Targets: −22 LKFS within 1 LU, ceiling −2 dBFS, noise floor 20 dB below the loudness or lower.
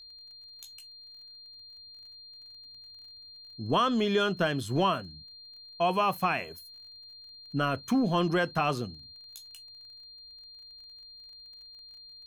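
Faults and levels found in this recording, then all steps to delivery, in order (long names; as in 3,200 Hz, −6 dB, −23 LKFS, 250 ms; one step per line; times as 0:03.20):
crackle rate 27 per second; interfering tone 4,200 Hz; level of the tone −47 dBFS; integrated loudness −28.5 LKFS; sample peak −14.5 dBFS; target loudness −22.0 LKFS
→ click removal
notch filter 4,200 Hz, Q 30
level +6.5 dB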